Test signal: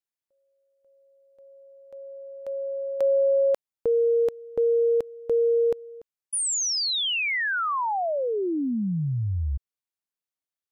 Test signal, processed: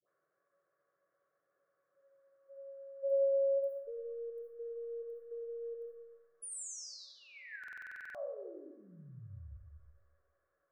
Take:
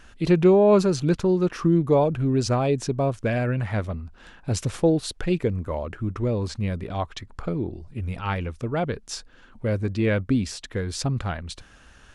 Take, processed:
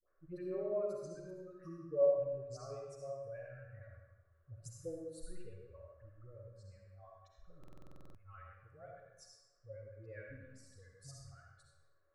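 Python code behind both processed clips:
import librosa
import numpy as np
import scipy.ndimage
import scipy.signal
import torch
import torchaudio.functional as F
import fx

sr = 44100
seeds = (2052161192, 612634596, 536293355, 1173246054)

y = fx.bin_expand(x, sr, power=2.0)
y = fx.high_shelf(y, sr, hz=8400.0, db=6.0)
y = fx.rev_freeverb(y, sr, rt60_s=1.1, hf_ratio=0.85, predelay_ms=25, drr_db=-1.0)
y = fx.dmg_noise_band(y, sr, seeds[0], low_hz=150.0, high_hz=1600.0, level_db=-60.0)
y = fx.peak_eq(y, sr, hz=2300.0, db=-5.0, octaves=1.1)
y = fx.fixed_phaser(y, sr, hz=880.0, stages=6)
y = fx.comb_fb(y, sr, f0_hz=560.0, decay_s=0.36, harmonics='all', damping=0.6, mix_pct=90)
y = fx.dispersion(y, sr, late='highs', ms=96.0, hz=1000.0)
y = fx.buffer_glitch(y, sr, at_s=(7.59,), block=2048, repeats=11)
y = F.gain(torch.from_numpy(y), -2.5).numpy()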